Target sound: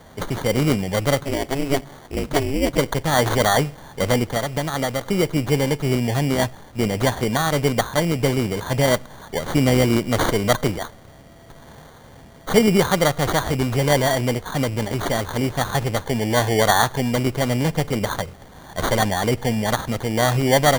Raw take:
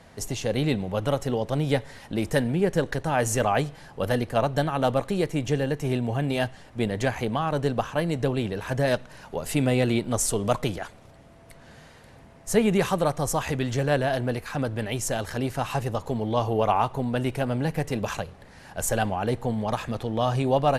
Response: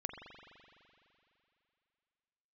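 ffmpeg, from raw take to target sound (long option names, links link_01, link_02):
-filter_complex "[0:a]asettb=1/sr,asplit=3[link_01][link_02][link_03];[link_01]atrim=end=4.314[link_04];[link_02]atrim=start=4.31:end=5.06,asetpts=PTS-STARTPTS,afade=type=in:duration=0.004:curve=qsin,afade=type=out:start_time=0.746:duration=0.004:curve=qsin,acompressor=threshold=-25dB:ratio=6[link_05];[link_03]atrim=start=5.056[link_06];[link_04][link_05]acrossfade=duration=0.004:curve1=hsin:curve2=qsin[link_07];[link_07][link_06]acrossfade=duration=0.004:curve1=qsin:curve2=hsin,acrusher=samples=17:mix=1:aa=0.000001,asplit=3[link_08][link_09][link_10];[link_08]afade=type=out:start_time=1.19:duration=0.02[link_11];[link_09]aeval=exprs='val(0)*sin(2*PI*140*n/s)':channel_layout=same,afade=type=in:start_time=1.19:duration=0.02,afade=type=out:start_time=2.77:duration=0.02[link_12];[link_10]afade=type=in:start_time=2.77:duration=0.02[link_13];[link_11][link_12][link_13]amix=inputs=3:normalize=0,volume=5.5dB"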